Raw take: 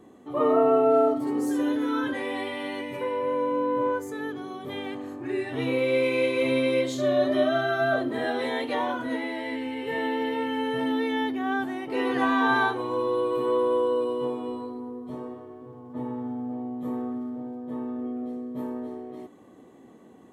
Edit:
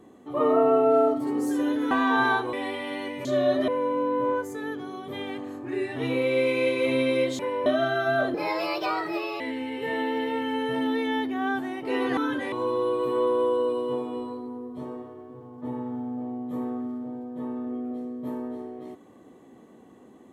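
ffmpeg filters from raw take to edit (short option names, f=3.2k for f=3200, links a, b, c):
-filter_complex "[0:a]asplit=11[a][b][c][d][e][f][g][h][i][j][k];[a]atrim=end=1.912[l];[b]atrim=start=12.218:end=12.842[m];[c]atrim=start=2.258:end=2.982[n];[d]atrim=start=6.958:end=7.392[o];[e]atrim=start=3.248:end=6.962[p];[f]atrim=start=2.978:end=3.252[q];[g]atrim=start=7.388:end=8.074[r];[h]atrim=start=8.07:end=9.45,asetpts=PTS-STARTPTS,asetrate=57330,aresample=44100[s];[i]atrim=start=9.446:end=12.222[t];[j]atrim=start=1.908:end=2.262[u];[k]atrim=start=12.838[v];[l][m]acrossfade=d=0.004:c1=hsin:c2=hsin[w];[w][n]acrossfade=d=0.004:c1=hsin:c2=hsin[x];[x][o]acrossfade=d=0.004:c1=hsin:c2=hsin[y];[y][p]acrossfade=d=0.004:c1=hsin:c2=hsin[z];[z][q]acrossfade=d=0.004:c1=hsin:c2=hsin[aa];[aa][r]acrossfade=d=0.004:c1=hsin:c2=hsin[ab];[ab][s]acrossfade=d=0.004:c1=hsin:c2=hsin[ac];[ac][t]acrossfade=d=0.004:c1=hsin:c2=hsin[ad];[ad][u]acrossfade=d=0.004:c1=hsin:c2=hsin[ae];[ae][v]acrossfade=d=0.004:c1=hsin:c2=hsin"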